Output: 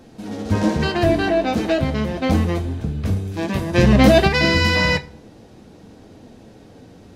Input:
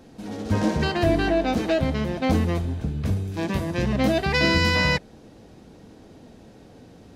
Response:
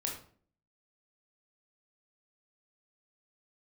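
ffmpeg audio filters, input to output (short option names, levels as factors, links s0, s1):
-filter_complex "[0:a]flanger=delay=8.3:depth=2.6:regen=-63:speed=1.1:shape=triangular,asplit=2[s0][s1];[1:a]atrim=start_sample=2205,asetrate=38367,aresample=44100[s2];[s1][s2]afir=irnorm=-1:irlink=0,volume=0.168[s3];[s0][s3]amix=inputs=2:normalize=0,asplit=3[s4][s5][s6];[s4]afade=t=out:st=3.73:d=0.02[s7];[s5]acontrast=80,afade=t=in:st=3.73:d=0.02,afade=t=out:st=4.27:d=0.02[s8];[s6]afade=t=in:st=4.27:d=0.02[s9];[s7][s8][s9]amix=inputs=3:normalize=0,volume=2"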